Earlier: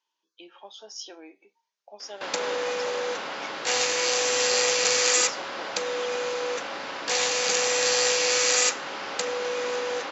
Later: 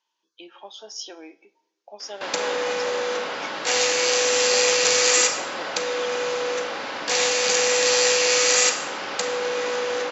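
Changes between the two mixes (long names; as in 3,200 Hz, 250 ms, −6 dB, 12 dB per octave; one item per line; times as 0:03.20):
speech +3.5 dB
reverb: on, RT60 1.1 s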